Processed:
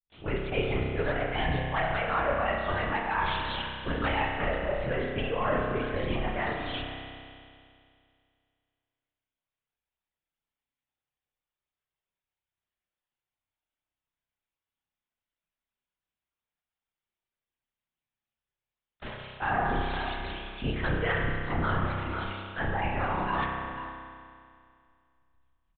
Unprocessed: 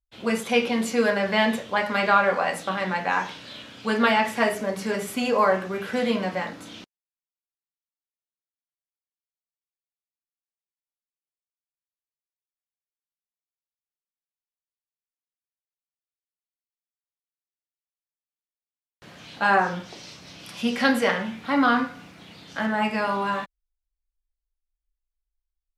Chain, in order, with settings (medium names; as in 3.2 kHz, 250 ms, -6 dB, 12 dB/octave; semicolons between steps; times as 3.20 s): fade-in on the opening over 0.50 s; LPC vocoder at 8 kHz whisper; delay 493 ms -23 dB; reverse; compression 5:1, threshold -37 dBFS, peak gain reduction 20.5 dB; reverse; reverb removal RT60 1.3 s; spring tank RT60 2.3 s, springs 31 ms, chirp 80 ms, DRR 0 dB; trim +8.5 dB